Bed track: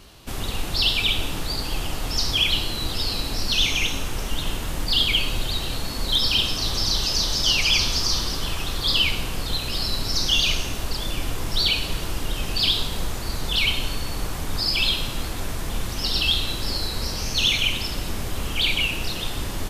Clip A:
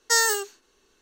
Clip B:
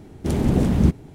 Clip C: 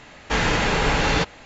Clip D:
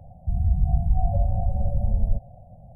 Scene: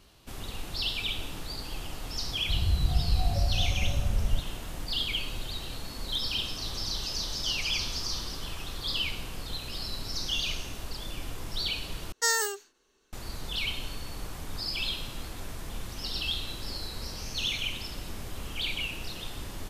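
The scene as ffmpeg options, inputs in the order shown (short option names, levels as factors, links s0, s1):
-filter_complex "[0:a]volume=0.299,asplit=2[s0][s1];[s0]atrim=end=12.124[s2];[1:a]atrim=end=1.01,asetpts=PTS-STARTPTS,volume=0.531[s3];[s1]atrim=start=13.126[s4];[4:a]atrim=end=2.75,asetpts=PTS-STARTPTS,volume=0.562,afade=t=in:d=0.004:c=hsin,afade=t=out:st=2.746:d=0.004:c=hsin,adelay=2220[s5];[s2][s3]acrossfade=d=0.004:c1=hsin:c2=hsin[s6];[s6][s4]acrossfade=d=0.004:c1=hsin:c2=hsin[s7];[s7][s5]amix=inputs=2:normalize=0"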